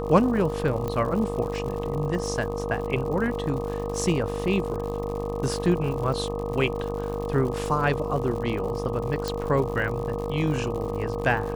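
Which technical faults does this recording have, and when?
buzz 50 Hz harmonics 25 -32 dBFS
crackle 120/s -33 dBFS
tone 470 Hz -30 dBFS
0.88 pop -17 dBFS
9.28 pop

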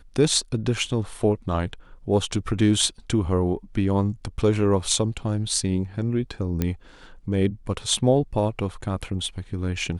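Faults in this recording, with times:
6.62 pop -10 dBFS

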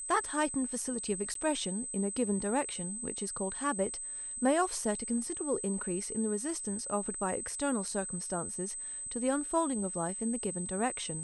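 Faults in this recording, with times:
tone 8200 Hz -38 dBFS
1.34–1.35 gap 13 ms

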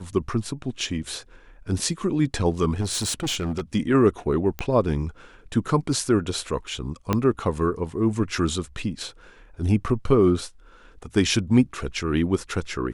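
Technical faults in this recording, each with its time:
2.8–3.61 clipped -22.5 dBFS
4.59 pop -13 dBFS
7.13 pop -8 dBFS

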